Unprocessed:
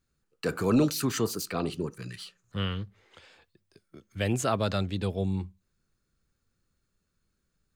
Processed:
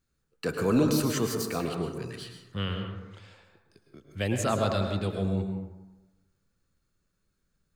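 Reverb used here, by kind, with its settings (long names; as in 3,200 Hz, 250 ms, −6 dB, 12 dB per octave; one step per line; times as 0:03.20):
dense smooth reverb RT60 1.1 s, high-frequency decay 0.4×, pre-delay 95 ms, DRR 3.5 dB
level −1 dB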